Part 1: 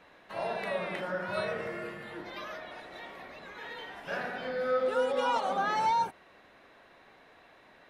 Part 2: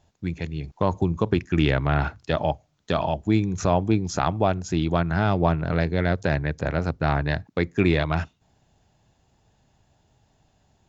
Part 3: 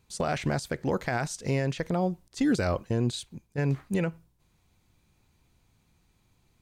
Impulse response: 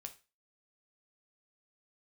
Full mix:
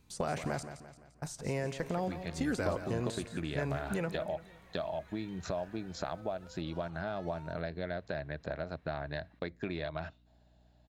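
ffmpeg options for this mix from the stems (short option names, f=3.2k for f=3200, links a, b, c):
-filter_complex "[0:a]acompressor=threshold=-40dB:ratio=4,highpass=f=620:p=1,aeval=exprs='0.0141*(abs(mod(val(0)/0.0141+3,4)-2)-1)':c=same,adelay=1500,volume=-13.5dB[a];[1:a]equalizer=f=100:t=o:w=0.33:g=-9,equalizer=f=630:t=o:w=0.33:g=11,equalizer=f=1.6k:t=o:w=0.33:g=5,equalizer=f=4k:t=o:w=0.33:g=9,equalizer=f=6.3k:t=o:w=0.33:g=-9,acompressor=threshold=-25dB:ratio=6,adelay=1850,volume=-9dB[b];[2:a]acrossover=split=550|1700|7100[c][d][e][f];[c]acompressor=threshold=-35dB:ratio=4[g];[d]acompressor=threshold=-35dB:ratio=4[h];[e]acompressor=threshold=-50dB:ratio=4[i];[f]acompressor=threshold=-49dB:ratio=4[j];[g][h][i][j]amix=inputs=4:normalize=0,volume=-2dB,asplit=3[k][l][m];[k]atrim=end=0.63,asetpts=PTS-STARTPTS,afade=t=out:st=0.626:d=0.004:c=hsin[n];[l]atrim=start=0.63:end=1.22,asetpts=PTS-STARTPTS,volume=0[o];[m]atrim=start=1.22,asetpts=PTS-STARTPTS,afade=t=in:d=0.004:c=hsin[p];[n][o][p]concat=n=3:v=0:a=1,asplit=3[q][r][s];[r]volume=-8dB[t];[s]volume=-9.5dB[u];[3:a]atrim=start_sample=2205[v];[t][v]afir=irnorm=-1:irlink=0[w];[u]aecho=0:1:172|344|516|688|860|1032:1|0.45|0.202|0.0911|0.041|0.0185[x];[a][b][q][w][x]amix=inputs=5:normalize=0,aeval=exprs='val(0)+0.000631*(sin(2*PI*60*n/s)+sin(2*PI*2*60*n/s)/2+sin(2*PI*3*60*n/s)/3+sin(2*PI*4*60*n/s)/4+sin(2*PI*5*60*n/s)/5)':c=same"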